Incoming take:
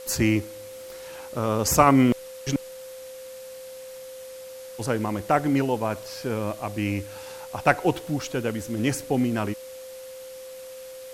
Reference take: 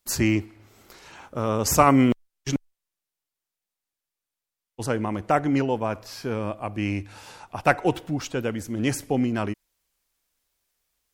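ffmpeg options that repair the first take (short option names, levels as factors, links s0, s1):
-af "bandreject=f=520:w=30,afwtdn=0.0045"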